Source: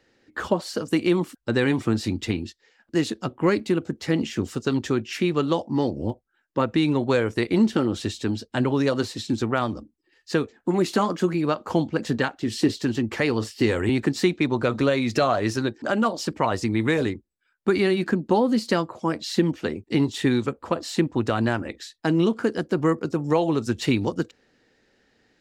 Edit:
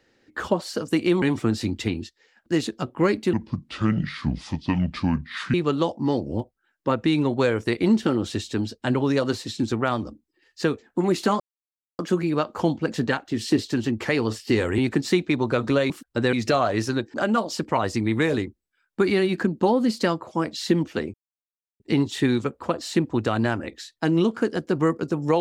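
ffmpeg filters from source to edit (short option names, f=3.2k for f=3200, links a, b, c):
-filter_complex "[0:a]asplit=8[a][b][c][d][e][f][g][h];[a]atrim=end=1.222[i];[b]atrim=start=1.648:end=3.764[j];[c]atrim=start=3.76:end=5.24,asetpts=PTS-STARTPTS,asetrate=29547,aresample=44100[k];[d]atrim=start=5.236:end=11.1,asetpts=PTS-STARTPTS,afade=t=out:st=5.86:d=0.004:c=hsin,apad=pad_dur=0.59[l];[e]atrim=start=11.1:end=15.012,asetpts=PTS-STARTPTS,afade=t=in:d=0.004:c=hsin[m];[f]atrim=start=1.218:end=1.652[n];[g]atrim=start=15.008:end=19.82,asetpts=PTS-STARTPTS,afade=t=out:st=4.808:d=0.004:c=hsin,apad=pad_dur=0.66[o];[h]atrim=start=19.82,asetpts=PTS-STARTPTS,afade=t=in:d=0.004:c=hsin[p];[i][j]acrossfade=d=0.004:c1=hsin:c2=hsin[q];[q][k]acrossfade=d=0.004:c1=hsin:c2=hsin[r];[l][m]concat=n=2:v=0:a=1[s];[r][s]acrossfade=d=0.004:c1=hsin:c2=hsin[t];[t][n]acrossfade=d=0.004:c1=hsin:c2=hsin[u];[o][p]concat=n=2:v=0:a=1[v];[u][v]acrossfade=d=0.004:c1=hsin:c2=hsin"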